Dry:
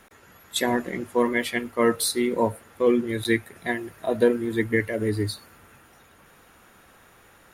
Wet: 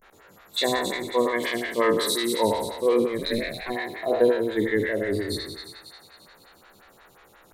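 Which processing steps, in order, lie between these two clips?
peak hold with a decay on every bin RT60 1.11 s
thirty-one-band graphic EQ 250 Hz −5 dB, 4,000 Hz +6 dB, 10,000 Hz −5 dB
0:03.16–0:03.69: ring modulation 59 Hz → 370 Hz
pitch vibrato 0.34 Hz 59 cents
on a send: delay with a high-pass on its return 278 ms, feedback 50%, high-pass 2,100 Hz, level −8 dB
on the sum: phaser with staggered stages 5.6 Hz

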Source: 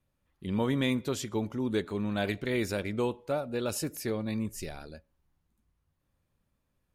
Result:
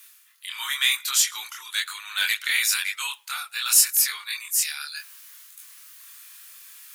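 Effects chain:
inverse Chebyshev high-pass filter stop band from 610 Hz, stop band 40 dB
spectral tilt +4.5 dB per octave
reversed playback
upward compression, threshold −38 dBFS
reversed playback
multi-voice chorus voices 2, 0.98 Hz, delay 24 ms, depth 3.5 ms
in parallel at −4 dB: soft clipping −31 dBFS, distortion −7 dB
on the sum: level +8.5 dB

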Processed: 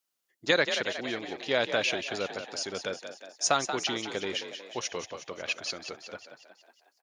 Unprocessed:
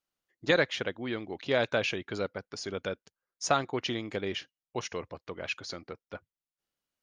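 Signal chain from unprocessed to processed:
high-pass filter 230 Hz 6 dB per octave
high-shelf EQ 4,300 Hz +10 dB
echo with shifted repeats 182 ms, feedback 56%, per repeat +49 Hz, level −9 dB

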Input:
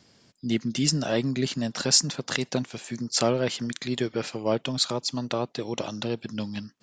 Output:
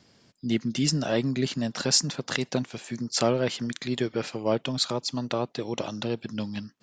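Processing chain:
high-shelf EQ 6,200 Hz −5 dB

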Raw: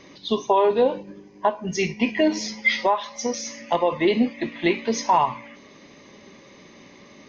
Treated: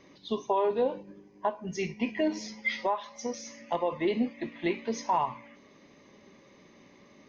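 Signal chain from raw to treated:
parametric band 4,400 Hz −4 dB 2.2 octaves
level −8 dB

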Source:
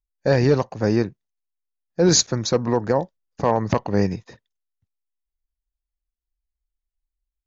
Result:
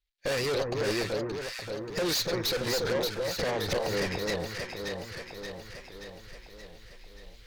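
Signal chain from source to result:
running median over 5 samples
camcorder AGC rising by 34 dB per second
graphic EQ with 10 bands 125 Hz −7 dB, 250 Hz −9 dB, 500 Hz +4 dB, 1,000 Hz −9 dB, 2,000 Hz +9 dB, 4,000 Hz +12 dB
tube saturation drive 27 dB, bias 0.4
on a send: delay that swaps between a low-pass and a high-pass 289 ms, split 1,300 Hz, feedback 77%, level −2 dB
on the sum: wow of a warped record 78 rpm, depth 100 cents

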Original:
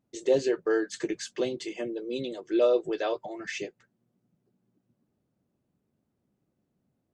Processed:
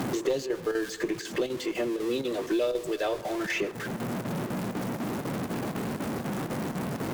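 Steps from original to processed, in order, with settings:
converter with a step at zero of −36.5 dBFS
square-wave tremolo 4 Hz, depth 60%, duty 85%
harmonic generator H 2 −13 dB, 4 −21 dB, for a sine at −11.5 dBFS
on a send at −18 dB: convolution reverb RT60 1.0 s, pre-delay 82 ms
on the sum: multiband upward and downward compressor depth 100%

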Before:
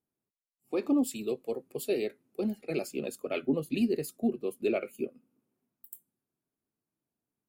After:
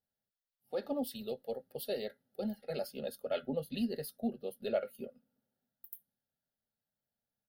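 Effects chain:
phaser with its sweep stopped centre 1,600 Hz, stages 8
comb filter 3.6 ms, depth 33%

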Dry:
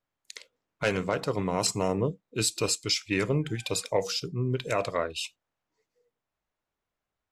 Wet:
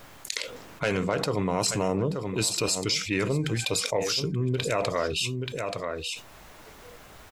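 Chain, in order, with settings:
single-tap delay 880 ms −17 dB
envelope flattener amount 70%
level −2 dB

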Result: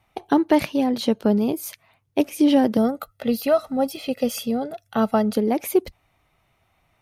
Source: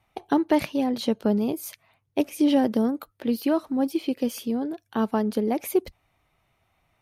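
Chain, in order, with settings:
0:02.77–0:05.37: comb filter 1.5 ms, depth 90%
level +3.5 dB

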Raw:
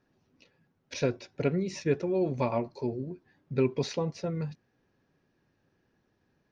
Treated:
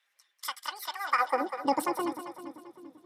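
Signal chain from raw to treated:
high-pass filter sweep 890 Hz → 62 Hz, 0:02.19–0:03.42
change of speed 2.13×
echo with a time of its own for lows and highs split 390 Hz, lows 391 ms, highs 196 ms, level −9 dB

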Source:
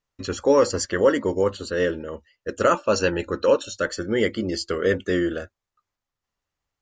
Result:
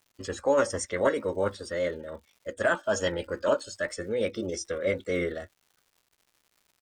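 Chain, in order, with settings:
downsampling to 32,000 Hz
surface crackle 210 per second −45 dBFS
formants moved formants +3 semitones
level −6 dB

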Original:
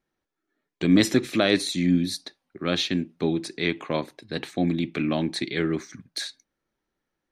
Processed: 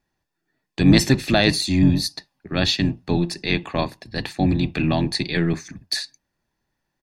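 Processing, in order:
sub-octave generator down 1 octave, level −4 dB
parametric band 4,600 Hz +5.5 dB 0.22 octaves
comb filter 1.2 ms, depth 41%
wrong playback speed 24 fps film run at 25 fps
level +3.5 dB

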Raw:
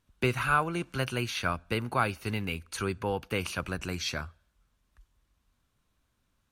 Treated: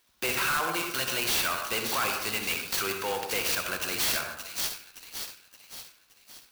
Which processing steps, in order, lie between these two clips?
bass and treble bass −10 dB, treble +14 dB
soft clipping −26 dBFS, distortion −9 dB
Butterworth low-pass 6,200 Hz 48 dB per octave
spectral tilt +2.5 dB per octave
delay with a high-pass on its return 571 ms, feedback 49%, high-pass 3,700 Hz, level −6.5 dB
on a send at −4 dB: convolution reverb RT60 0.90 s, pre-delay 52 ms
on the sum: wave folding −25 dBFS
converter with an unsteady clock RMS 0.037 ms
level +4 dB

